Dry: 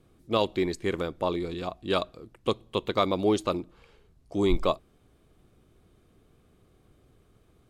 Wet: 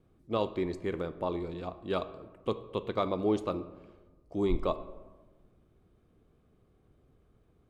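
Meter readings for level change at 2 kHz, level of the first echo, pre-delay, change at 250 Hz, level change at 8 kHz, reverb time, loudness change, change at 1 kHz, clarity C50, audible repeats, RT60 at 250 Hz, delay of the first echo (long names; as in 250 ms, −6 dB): −8.5 dB, no echo audible, 3 ms, −4.5 dB, below −10 dB, 1.3 s, −5.0 dB, −5.5 dB, 14.0 dB, no echo audible, 1.5 s, no echo audible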